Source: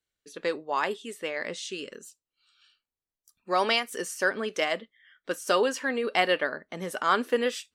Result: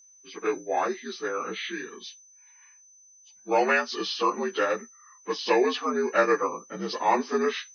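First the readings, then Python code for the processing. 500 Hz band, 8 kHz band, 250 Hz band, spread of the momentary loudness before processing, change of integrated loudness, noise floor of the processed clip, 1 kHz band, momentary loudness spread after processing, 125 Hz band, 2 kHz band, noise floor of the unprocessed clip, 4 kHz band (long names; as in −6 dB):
+2.5 dB, −0.5 dB, +3.5 dB, 12 LU, +1.5 dB, −56 dBFS, +2.5 dB, 12 LU, can't be measured, −0.5 dB, below −85 dBFS, −2.0 dB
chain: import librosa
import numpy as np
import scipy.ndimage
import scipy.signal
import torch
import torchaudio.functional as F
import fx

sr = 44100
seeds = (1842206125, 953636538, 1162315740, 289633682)

y = fx.partial_stretch(x, sr, pct=79)
y = y + 10.0 ** (-56.0 / 20.0) * np.sin(2.0 * np.pi * 6100.0 * np.arange(len(y)) / sr)
y = fx.dynamic_eq(y, sr, hz=5400.0, q=1.2, threshold_db=-55.0, ratio=4.0, max_db=6)
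y = F.gain(torch.from_numpy(y), 3.0).numpy()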